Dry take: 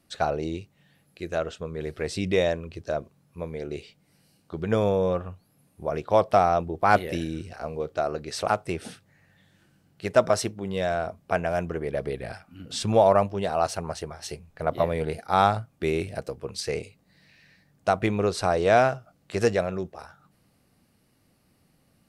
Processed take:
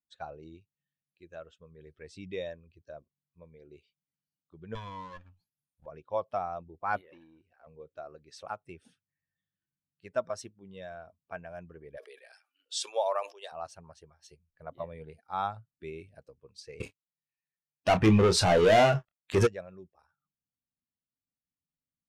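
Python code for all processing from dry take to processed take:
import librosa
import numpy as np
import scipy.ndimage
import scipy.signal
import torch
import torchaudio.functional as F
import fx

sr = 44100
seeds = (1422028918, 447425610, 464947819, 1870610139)

y = fx.chain(x, sr, fx.lower_of_two(delay_ms=1.2),
    fx.peak_eq(hz=5800.0, db=7.5, octaves=2.5),
    fx.sustainer(db_per_s=140.0), at=(4.75, 5.86))
y = fx.chain(y, sr, fx.bass_treble(bass_db=-10, treble_db=-10),
    fx.clip_hard(threshold_db=-23.0),
    fx.transformer_sat(knee_hz=480.0), at=(7.01, 7.67))
y = fx.chain(y, sr, fx.cheby2_highpass(hz=200.0, order=4, stop_db=40),
    fx.high_shelf(hz=2400.0, db=11.5),
    fx.sustainer(db_per_s=130.0), at=(11.97, 13.52))
y = fx.chain(y, sr, fx.leveller(passes=5),
    fx.doubler(ms=28.0, db=-7), at=(16.8, 19.47))
y = fx.bin_expand(y, sr, power=1.5)
y = scipy.signal.sosfilt(scipy.signal.butter(2, 8800.0, 'lowpass', fs=sr, output='sos'), y)
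y = y * librosa.db_to_amplitude(-8.0)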